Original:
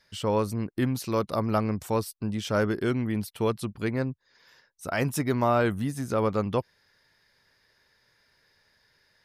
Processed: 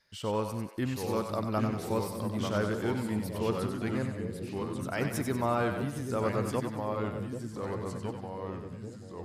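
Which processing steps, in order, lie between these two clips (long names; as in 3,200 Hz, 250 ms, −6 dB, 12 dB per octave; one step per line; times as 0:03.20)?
0:03.82–0:04.99: surface crackle 25 per second −52 dBFS
delay with pitch and tempo change per echo 702 ms, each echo −2 semitones, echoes 2, each echo −6 dB
echo with a time of its own for lows and highs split 530 Hz, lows 787 ms, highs 94 ms, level −6.5 dB
level −6 dB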